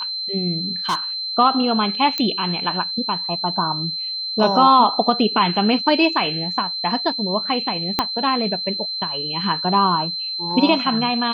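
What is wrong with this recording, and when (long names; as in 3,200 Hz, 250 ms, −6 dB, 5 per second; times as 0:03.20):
whistle 4,100 Hz −24 dBFS
0:00.89–0:00.95: clipping −16.5 dBFS
0:02.18: click −8 dBFS
0:07.99: click −3 dBFS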